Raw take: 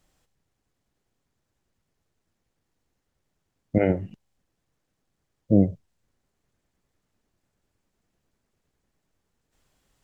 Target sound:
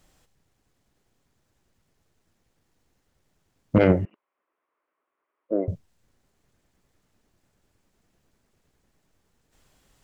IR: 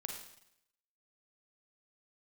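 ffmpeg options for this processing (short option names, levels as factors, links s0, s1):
-filter_complex "[0:a]asettb=1/sr,asplit=3[s0][s1][s2];[s0]atrim=end=4.054[s3];[s1]atrim=start=4.05:end=5.68,asetpts=PTS-STARTPTS,afade=t=in:d=0.004:c=qsin,afade=t=out:st=1.626:d=0.004:c=qsin,highpass=f=420:w=0.5412,highpass=f=420:w=1.3066,equalizer=f=490:t=q:w=4:g=-7,equalizer=f=770:t=q:w=4:g=-9,equalizer=f=1100:t=q:w=4:g=6,equalizer=f=1700:t=q:w=4:g=-6,lowpass=f=2100:w=0.5412,lowpass=f=2100:w=1.3066[s4];[s2]atrim=start=5.676[s5];[s3][s4]acrossfade=d=0.004:c1=hsin:c2=qsin[s6];[s6][s5]acrossfade=d=0.004:c1=qsin:c2=hsin,aeval=exprs='0.376*sin(PI/2*1.58*val(0)/0.376)':c=same,volume=0.841"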